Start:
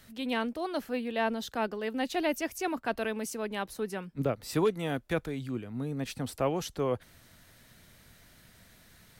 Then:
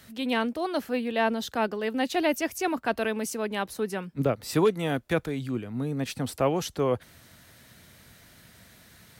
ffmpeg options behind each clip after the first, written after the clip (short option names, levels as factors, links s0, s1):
-af "highpass=58,volume=1.68"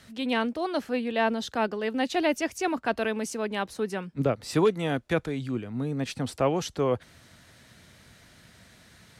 -af "lowpass=8700"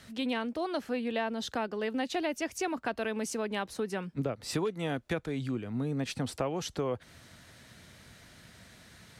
-af "acompressor=threshold=0.0355:ratio=5"